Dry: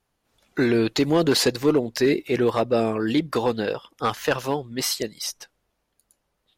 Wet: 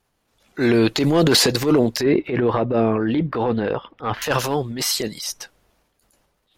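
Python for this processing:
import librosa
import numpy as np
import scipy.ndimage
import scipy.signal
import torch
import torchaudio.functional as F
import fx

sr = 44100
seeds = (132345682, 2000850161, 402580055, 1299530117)

y = fx.transient(x, sr, attack_db=-9, sustain_db=7)
y = fx.air_absorb(y, sr, metres=410.0, at=(2.03, 4.22))
y = F.gain(torch.from_numpy(y), 4.5).numpy()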